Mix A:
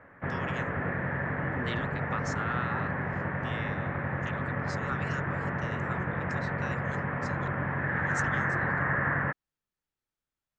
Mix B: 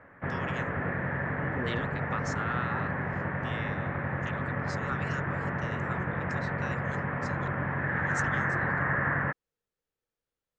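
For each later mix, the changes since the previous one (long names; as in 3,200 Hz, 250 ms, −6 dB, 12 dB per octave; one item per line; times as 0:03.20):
second voice: add parametric band 480 Hz +13.5 dB 0.39 octaves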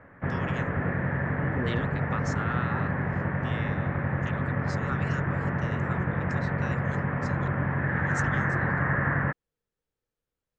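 master: add low-shelf EQ 320 Hz +6.5 dB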